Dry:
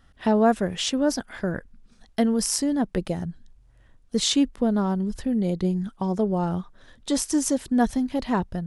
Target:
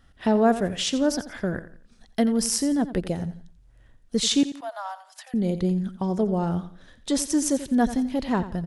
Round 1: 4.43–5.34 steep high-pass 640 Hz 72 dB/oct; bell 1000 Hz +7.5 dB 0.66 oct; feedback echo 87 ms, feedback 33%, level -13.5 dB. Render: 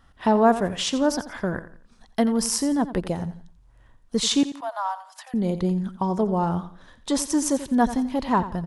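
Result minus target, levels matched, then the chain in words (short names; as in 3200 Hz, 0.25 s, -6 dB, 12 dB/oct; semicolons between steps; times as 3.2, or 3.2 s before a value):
1000 Hz band +5.0 dB
4.43–5.34 steep high-pass 640 Hz 72 dB/oct; bell 1000 Hz -2.5 dB 0.66 oct; feedback echo 87 ms, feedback 33%, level -13.5 dB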